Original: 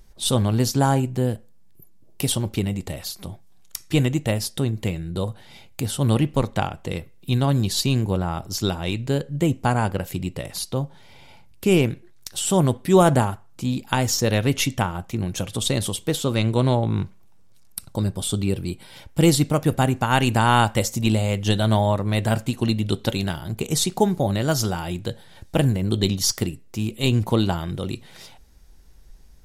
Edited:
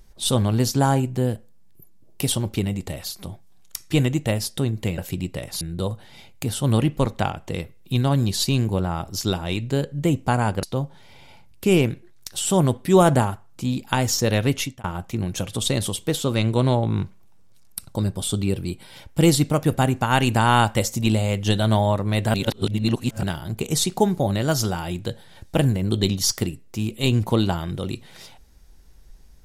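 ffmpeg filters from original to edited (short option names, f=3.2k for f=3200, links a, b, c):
-filter_complex "[0:a]asplit=7[a][b][c][d][e][f][g];[a]atrim=end=4.982[h];[b]atrim=start=9.998:end=10.632[i];[c]atrim=start=4.978:end=10.002[j];[d]atrim=start=10.628:end=14.84,asetpts=PTS-STARTPTS,afade=t=out:st=3.862:d=0.35[k];[e]atrim=start=14.84:end=22.342,asetpts=PTS-STARTPTS,afade=t=in:d=0.004:c=hsin[l];[f]atrim=start=22.338:end=23.232,asetpts=PTS-STARTPTS,areverse[m];[g]atrim=start=23.228[n];[h][i]acrossfade=d=0.004:c1=hsin:c2=hsin[o];[o][j]acrossfade=d=0.004:c1=hsin:c2=hsin[p];[k][l]concat=n=2:v=0:a=1[q];[p][q]acrossfade=d=0.004:c1=hsin:c2=hsin[r];[r][m]acrossfade=d=0.004:c1=hsin:c2=hsin[s];[s][n]acrossfade=d=0.004:c1=hsin:c2=hsin"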